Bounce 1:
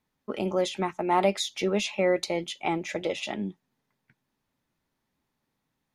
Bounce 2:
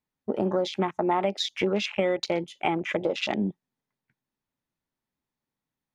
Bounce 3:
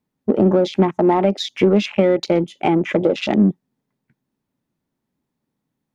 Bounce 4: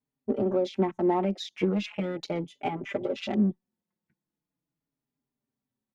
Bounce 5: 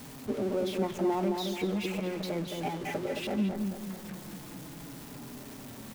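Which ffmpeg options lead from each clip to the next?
-af "afwtdn=0.0158,acompressor=threshold=-29dB:ratio=5,volume=7dB"
-filter_complex "[0:a]equalizer=f=220:w=0.39:g=12,asplit=2[a][b];[b]asoftclip=type=tanh:threshold=-19dB,volume=-7dB[c];[a][c]amix=inputs=2:normalize=0"
-filter_complex "[0:a]asplit=2[a][b];[b]adelay=4.5,afreqshift=-0.39[c];[a][c]amix=inputs=2:normalize=1,volume=-8.5dB"
-filter_complex "[0:a]aeval=exprs='val(0)+0.5*0.0266*sgn(val(0))':c=same,asplit=2[a][b];[b]adelay=218,lowpass=f=1.7k:p=1,volume=-4dB,asplit=2[c][d];[d]adelay=218,lowpass=f=1.7k:p=1,volume=0.47,asplit=2[e][f];[f]adelay=218,lowpass=f=1.7k:p=1,volume=0.47,asplit=2[g][h];[h]adelay=218,lowpass=f=1.7k:p=1,volume=0.47,asplit=2[i][j];[j]adelay=218,lowpass=f=1.7k:p=1,volume=0.47,asplit=2[k][l];[l]adelay=218,lowpass=f=1.7k:p=1,volume=0.47[m];[a][c][e][g][i][k][m]amix=inputs=7:normalize=0,volume=-6.5dB"

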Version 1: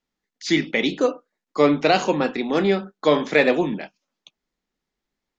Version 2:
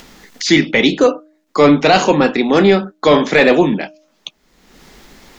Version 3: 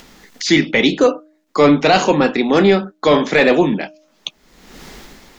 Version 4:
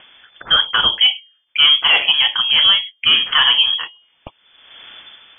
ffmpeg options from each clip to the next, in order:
-af "acompressor=mode=upward:threshold=-28dB:ratio=2.5,apsyclip=13dB,bandreject=f=308.5:t=h:w=4,bandreject=f=617:t=h:w=4,volume=-3dB"
-af "dynaudnorm=f=100:g=9:m=10dB,volume=-2.5dB"
-af "lowpass=f=3k:t=q:w=0.5098,lowpass=f=3k:t=q:w=0.6013,lowpass=f=3k:t=q:w=0.9,lowpass=f=3k:t=q:w=2.563,afreqshift=-3500,volume=-1dB"

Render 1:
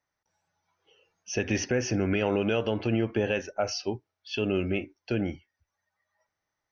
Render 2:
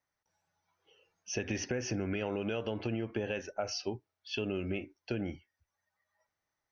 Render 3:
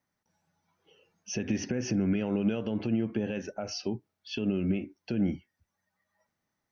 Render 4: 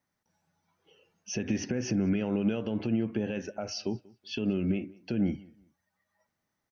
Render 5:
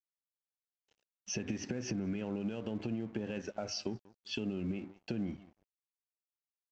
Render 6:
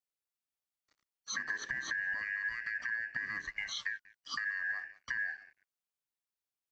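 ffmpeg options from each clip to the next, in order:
-af "acompressor=threshold=-28dB:ratio=4,volume=-3dB"
-af "alimiter=level_in=4dB:limit=-24dB:level=0:latency=1:release=180,volume=-4dB,equalizer=f=200:t=o:w=1.3:g=13,volume=2dB"
-filter_complex "[0:a]asplit=2[a][b];[b]adelay=187,lowpass=f=4.6k:p=1,volume=-24dB,asplit=2[c][d];[d]adelay=187,lowpass=f=4.6k:p=1,volume=0.27[e];[a][c][e]amix=inputs=3:normalize=0"
-af "acompressor=threshold=-33dB:ratio=6,aresample=16000,aeval=exprs='sgn(val(0))*max(abs(val(0))-0.0015,0)':c=same,aresample=44100"
-af "afftfilt=real='real(if(lt(b,272),68*(eq(floor(b/68),0)*1+eq(floor(b/68),1)*0+eq(floor(b/68),2)*3+eq(floor(b/68),3)*2)+mod(b,68),b),0)':imag='imag(if(lt(b,272),68*(eq(floor(b/68),0)*1+eq(floor(b/68),1)*0+eq(floor(b/68),2)*3+eq(floor(b/68),3)*2)+mod(b,68),b),0)':win_size=2048:overlap=0.75"

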